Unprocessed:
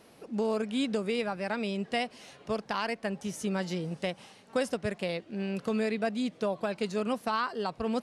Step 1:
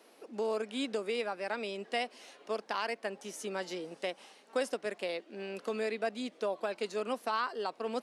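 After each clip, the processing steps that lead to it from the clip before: high-pass 280 Hz 24 dB/octave; trim -2.5 dB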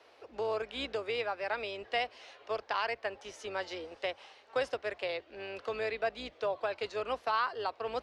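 octave divider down 2 oct, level -1 dB; three-band isolator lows -18 dB, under 400 Hz, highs -23 dB, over 5.4 kHz; trim +2.5 dB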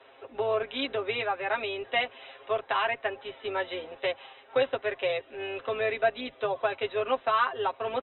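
brick-wall FIR low-pass 4 kHz; comb 7.5 ms, depth 86%; trim +3.5 dB

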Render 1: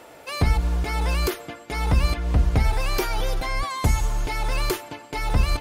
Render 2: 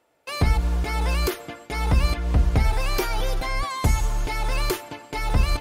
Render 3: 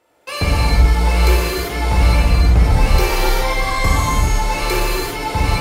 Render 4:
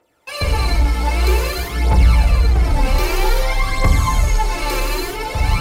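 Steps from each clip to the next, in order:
gate with hold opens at -34 dBFS
in parallel at -0.5 dB: compression, threshold -29 dBFS, peak gain reduction 14 dB; on the sum: gated-style reverb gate 420 ms flat, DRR -7.5 dB; trim -2.5 dB
phaser 0.52 Hz, delay 3.9 ms, feedback 56%; in parallel at -9 dB: hard clipper -9 dBFS, distortion -10 dB; on the sum: trim -6 dB

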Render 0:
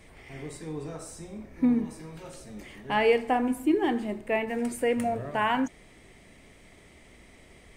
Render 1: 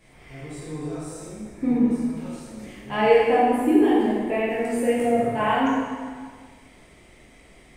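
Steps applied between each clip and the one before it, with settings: dynamic bell 370 Hz, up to +5 dB, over -35 dBFS, Q 0.74; plate-style reverb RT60 1.7 s, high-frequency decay 0.8×, DRR -8.5 dB; trim -6 dB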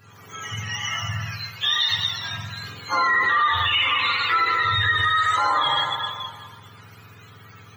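spectrum inverted on a logarithmic axis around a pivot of 940 Hz; FFT filter 180 Hz 0 dB, 350 Hz -11 dB, 1.2 kHz +10 dB, 8.3 kHz -1 dB; peak limiter -16.5 dBFS, peak gain reduction 13 dB; trim +4 dB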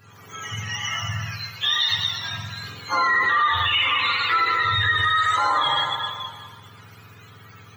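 feedback echo behind a high-pass 116 ms, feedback 57%, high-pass 4.3 kHz, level -11.5 dB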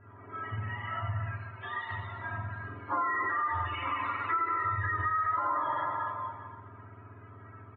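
Bessel low-pass 1.1 kHz, order 6; comb 3.1 ms, depth 84%; compression 3:1, threshold -27 dBFS, peak gain reduction 7.5 dB; trim -2 dB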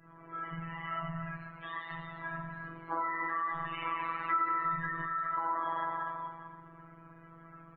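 robot voice 165 Hz

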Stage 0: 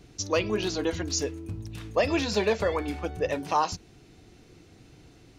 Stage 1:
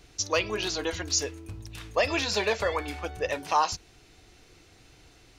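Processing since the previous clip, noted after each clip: peaking EQ 190 Hz -12.5 dB 2.6 oct; trim +3.5 dB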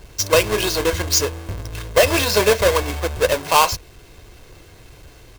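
square wave that keeps the level; comb 1.9 ms, depth 36%; trim +5.5 dB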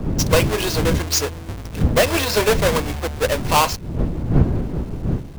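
square wave that keeps the level; wind noise 180 Hz -19 dBFS; trim -3.5 dB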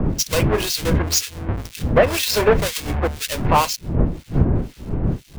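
in parallel at +3 dB: compression, threshold -25 dBFS, peak gain reduction 15.5 dB; on the sum: harmonic tremolo 2 Hz, depth 100%, crossover 2.3 kHz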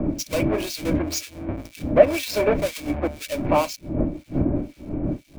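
small resonant body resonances 300/590/2300 Hz, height 15 dB, ringing for 40 ms; trim -9.5 dB

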